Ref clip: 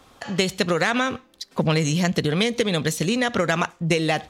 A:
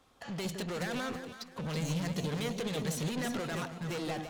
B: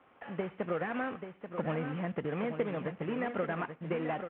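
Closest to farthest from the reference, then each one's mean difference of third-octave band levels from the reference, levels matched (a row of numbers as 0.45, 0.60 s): A, B; 7.0, 10.0 dB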